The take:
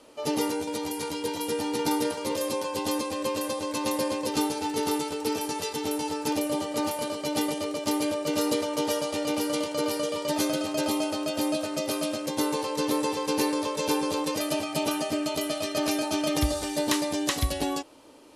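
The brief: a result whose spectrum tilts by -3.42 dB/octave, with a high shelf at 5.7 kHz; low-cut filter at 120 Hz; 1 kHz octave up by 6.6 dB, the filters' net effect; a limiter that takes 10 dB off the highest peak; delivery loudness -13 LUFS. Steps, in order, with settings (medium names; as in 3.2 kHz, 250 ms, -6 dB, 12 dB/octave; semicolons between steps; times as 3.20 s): high-pass 120 Hz; peaking EQ 1 kHz +7.5 dB; treble shelf 5.7 kHz +4.5 dB; trim +14.5 dB; peak limiter -3.5 dBFS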